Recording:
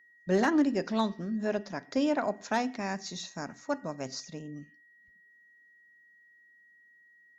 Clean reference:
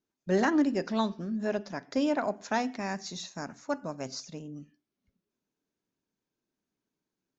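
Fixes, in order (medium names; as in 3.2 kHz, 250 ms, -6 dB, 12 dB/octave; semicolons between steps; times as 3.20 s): clip repair -17 dBFS; band-stop 1.9 kHz, Q 30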